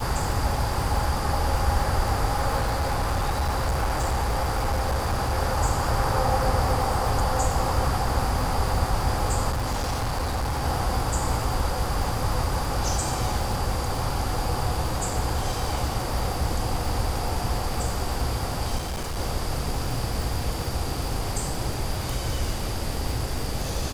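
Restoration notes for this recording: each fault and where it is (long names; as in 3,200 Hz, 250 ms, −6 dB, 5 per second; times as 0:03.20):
surface crackle 200 per second −31 dBFS
0:02.60–0:05.38: clipping −20.5 dBFS
0:09.50–0:10.64: clipping −23 dBFS
0:18.77–0:19.19: clipping −26.5 dBFS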